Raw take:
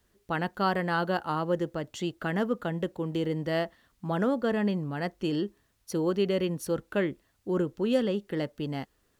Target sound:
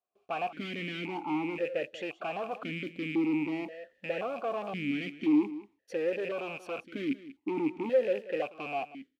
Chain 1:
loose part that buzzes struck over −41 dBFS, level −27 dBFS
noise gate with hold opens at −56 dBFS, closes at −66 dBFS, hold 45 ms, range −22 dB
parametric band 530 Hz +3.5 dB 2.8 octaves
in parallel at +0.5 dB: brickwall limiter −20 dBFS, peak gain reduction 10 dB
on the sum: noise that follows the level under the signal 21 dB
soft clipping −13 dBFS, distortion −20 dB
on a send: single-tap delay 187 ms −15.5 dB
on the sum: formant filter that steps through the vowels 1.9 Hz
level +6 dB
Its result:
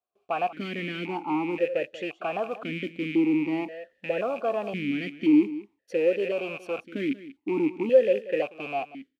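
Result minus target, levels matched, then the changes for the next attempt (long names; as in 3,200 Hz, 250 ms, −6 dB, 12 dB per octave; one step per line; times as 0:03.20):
soft clipping: distortion −12 dB
change: soft clipping −24.5 dBFS, distortion −8 dB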